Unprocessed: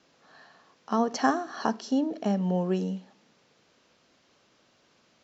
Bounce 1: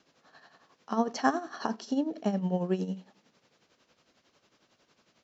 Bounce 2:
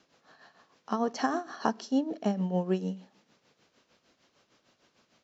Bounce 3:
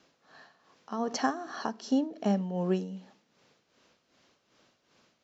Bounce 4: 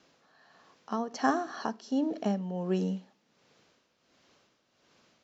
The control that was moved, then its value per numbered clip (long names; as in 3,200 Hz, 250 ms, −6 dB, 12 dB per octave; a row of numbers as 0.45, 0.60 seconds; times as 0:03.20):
amplitude tremolo, speed: 11, 6.6, 2.6, 1.4 Hertz